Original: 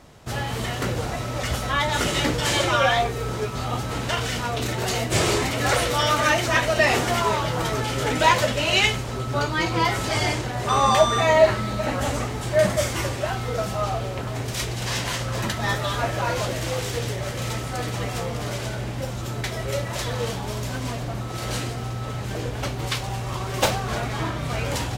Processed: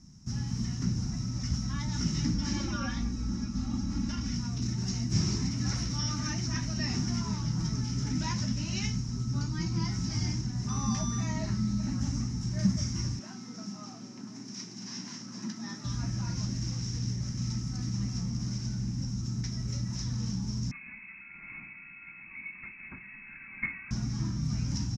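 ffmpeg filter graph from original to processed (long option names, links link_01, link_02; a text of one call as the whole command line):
ffmpeg -i in.wav -filter_complex "[0:a]asettb=1/sr,asplit=3[link_01][link_02][link_03];[link_01]atrim=end=2.344[link_04];[link_02]atrim=start=2.34:end=4.34,asetpts=PTS-STARTPTS,afade=type=in:duration=0.004:curve=qsin,afade=type=out:start_time=1.996:duration=0.004:curve=qsin,aemphasis=mode=reproduction:type=50fm,aecho=1:1:3.6:0.98,atrim=end_sample=88200[link_05];[link_03]atrim=start=4.336[link_06];[link_04][link_05]acrossfade=duration=0.004:curve1=hsin:curve2=qsin[link_07];[link_07][link_06]acrossfade=duration=0.004:curve1=qsin:curve2=hsin,asettb=1/sr,asplit=3[link_08][link_09][link_10];[link_08]atrim=end=13.194[link_11];[link_09]atrim=start=13.19:end=15.85,asetpts=PTS-STARTPTS,afade=type=in:duration=0.004:curve=qsin,afade=type=out:start_time=2.656:duration=0.004:curve=qsin,highpass=frequency=230:width=0.5412,highpass=frequency=230:width=1.3066,aemphasis=mode=reproduction:type=cd[link_12];[link_10]atrim=start=15.846[link_13];[link_11][link_12]acrossfade=duration=0.004:curve1=hsin:curve2=qsin[link_14];[link_14][link_13]acrossfade=duration=0.004:curve1=qsin:curve2=hsin,asettb=1/sr,asplit=3[link_15][link_16][link_17];[link_15]atrim=end=20.714[link_18];[link_16]atrim=start=20.71:end=23.91,asetpts=PTS-STARTPTS,afade=type=in:duration=0.004:curve=qsin,afade=type=out:start_time=3.196:duration=0.004:curve=qsin,equalizer=frequency=500:width=3.1:gain=15,lowpass=frequency=2300:width_type=q:width=0.5098,lowpass=frequency=2300:width_type=q:width=0.6013,lowpass=frequency=2300:width_type=q:width=0.9,lowpass=frequency=2300:width_type=q:width=2.563,afreqshift=-2700[link_19];[link_17]atrim=start=23.906[link_20];[link_18][link_19]acrossfade=duration=0.004:curve1=hsin:curve2=qsin[link_21];[link_21][link_20]acrossfade=duration=0.004:curve1=qsin:curve2=hsin,firequalizer=gain_entry='entry(120,0);entry(190,8);entry(490,-30);entry(900,-18);entry(2100,-17);entry(3400,-20);entry(5500,10);entry(8100,-12);entry(13000,-23)':delay=0.05:min_phase=1,acrossover=split=5100[link_22][link_23];[link_23]acompressor=threshold=-47dB:ratio=4:attack=1:release=60[link_24];[link_22][link_24]amix=inputs=2:normalize=0,bandreject=frequency=4500:width=12,volume=-3.5dB" out.wav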